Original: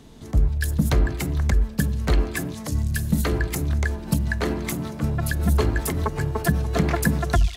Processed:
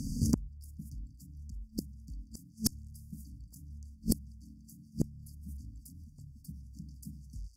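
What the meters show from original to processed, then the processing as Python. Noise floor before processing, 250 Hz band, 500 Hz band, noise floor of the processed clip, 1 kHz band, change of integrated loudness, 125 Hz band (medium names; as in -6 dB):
-37 dBFS, -12.0 dB, -24.0 dB, -57 dBFS, under -30 dB, -16.0 dB, -18.0 dB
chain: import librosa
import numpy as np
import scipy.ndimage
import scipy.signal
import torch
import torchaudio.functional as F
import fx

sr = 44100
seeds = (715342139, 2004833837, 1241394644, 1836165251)

y = fx.brickwall_bandstop(x, sr, low_hz=290.0, high_hz=4500.0)
y = fx.gate_flip(y, sr, shuts_db=-24.0, range_db=-36)
y = fx.cheby_harmonics(y, sr, harmonics=(6,), levels_db=(-24,), full_scale_db=-21.0)
y = F.gain(torch.from_numpy(y), 11.5).numpy()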